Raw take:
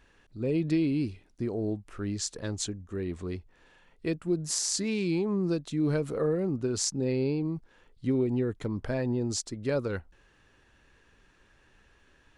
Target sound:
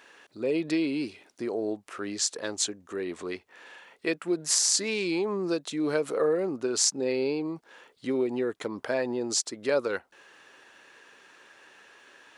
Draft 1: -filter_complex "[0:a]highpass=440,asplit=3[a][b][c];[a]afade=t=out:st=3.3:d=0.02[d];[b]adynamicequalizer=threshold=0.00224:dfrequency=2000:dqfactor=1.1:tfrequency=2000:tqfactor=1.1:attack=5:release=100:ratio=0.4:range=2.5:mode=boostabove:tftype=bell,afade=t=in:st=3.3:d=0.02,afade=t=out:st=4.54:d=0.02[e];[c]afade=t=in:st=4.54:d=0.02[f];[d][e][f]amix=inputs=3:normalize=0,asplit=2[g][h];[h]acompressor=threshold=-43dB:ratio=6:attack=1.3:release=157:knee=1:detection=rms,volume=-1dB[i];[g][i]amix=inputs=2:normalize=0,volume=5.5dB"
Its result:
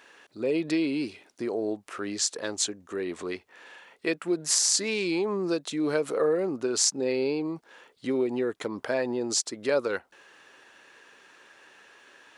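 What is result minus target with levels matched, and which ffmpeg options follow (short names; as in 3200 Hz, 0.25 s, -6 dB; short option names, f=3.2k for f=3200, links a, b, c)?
compressor: peak gain reduction -6 dB
-filter_complex "[0:a]highpass=440,asplit=3[a][b][c];[a]afade=t=out:st=3.3:d=0.02[d];[b]adynamicequalizer=threshold=0.00224:dfrequency=2000:dqfactor=1.1:tfrequency=2000:tqfactor=1.1:attack=5:release=100:ratio=0.4:range=2.5:mode=boostabove:tftype=bell,afade=t=in:st=3.3:d=0.02,afade=t=out:st=4.54:d=0.02[e];[c]afade=t=in:st=4.54:d=0.02[f];[d][e][f]amix=inputs=3:normalize=0,asplit=2[g][h];[h]acompressor=threshold=-50dB:ratio=6:attack=1.3:release=157:knee=1:detection=rms,volume=-1dB[i];[g][i]amix=inputs=2:normalize=0,volume=5.5dB"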